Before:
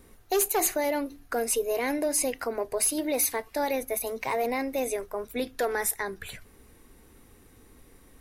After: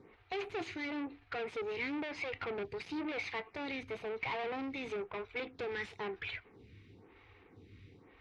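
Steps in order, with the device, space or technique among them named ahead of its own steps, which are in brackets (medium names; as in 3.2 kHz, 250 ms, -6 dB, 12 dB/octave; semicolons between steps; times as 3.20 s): vibe pedal into a guitar amplifier (lamp-driven phase shifter 1 Hz; valve stage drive 38 dB, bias 0.5; cabinet simulation 79–3800 Hz, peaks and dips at 100 Hz +9 dB, 240 Hz -6 dB, 590 Hz -9 dB, 1.1 kHz -3 dB, 1.6 kHz -4 dB, 2.3 kHz +6 dB); trim +4.5 dB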